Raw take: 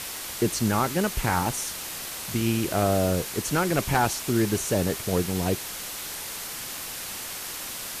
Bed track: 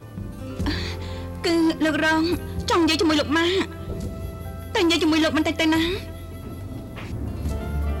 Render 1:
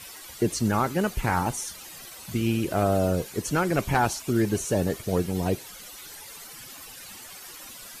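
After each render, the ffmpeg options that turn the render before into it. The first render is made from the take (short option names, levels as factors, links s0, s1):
-af "afftdn=nr=13:nf=-36"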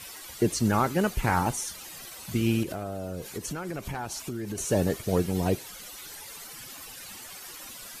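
-filter_complex "[0:a]asettb=1/sr,asplit=3[s0][s1][s2];[s0]atrim=end=2.634[s3];[s1]atrim=start=2.63:end=4.58,asetpts=PTS-STARTPTS,afade=t=in:d=0.004:c=qsin,afade=t=out:st=1.946:d=0.004:c=qsin,acompressor=threshold=0.0316:ratio=8:attack=3.2:release=140:knee=1:detection=peak[s4];[s2]atrim=start=4.576[s5];[s3][s4]acrossfade=d=0.004:c1=hsin:c2=qsin[s6];[s6][s5]acrossfade=d=0.004:c1=qsin:c2=hsin"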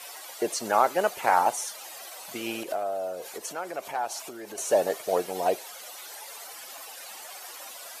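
-af "highpass=520,equalizer=f=670:w=1.4:g=10"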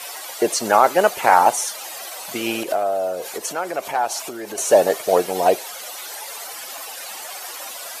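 -af "volume=2.82,alimiter=limit=0.891:level=0:latency=1"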